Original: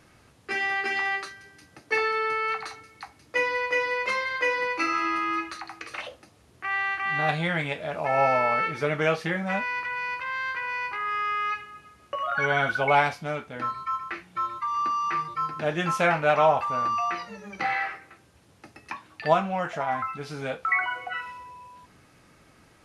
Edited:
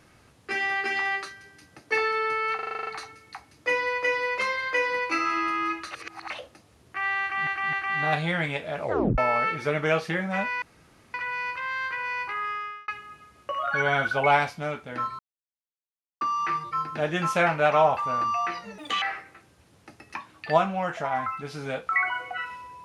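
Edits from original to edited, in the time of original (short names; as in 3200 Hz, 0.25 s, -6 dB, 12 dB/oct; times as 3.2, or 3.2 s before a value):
2.55 stutter 0.04 s, 9 plays
5.59–5.98 reverse
6.89–7.15 loop, 3 plays
7.98 tape stop 0.36 s
9.78 insert room tone 0.52 s
11.01–11.52 fade out
13.83–14.85 mute
17.42–17.78 speed 150%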